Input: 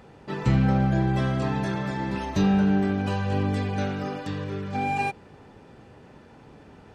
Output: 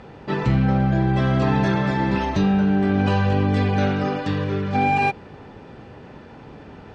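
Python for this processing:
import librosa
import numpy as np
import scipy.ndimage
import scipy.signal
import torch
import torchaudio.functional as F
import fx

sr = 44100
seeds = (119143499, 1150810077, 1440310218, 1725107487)

p1 = fx.over_compress(x, sr, threshold_db=-26.0, ratio=-0.5)
p2 = x + (p1 * librosa.db_to_amplitude(-1.0))
p3 = scipy.signal.sosfilt(scipy.signal.butter(2, 4900.0, 'lowpass', fs=sr, output='sos'), p2)
y = p3 * librosa.db_to_amplitude(1.0)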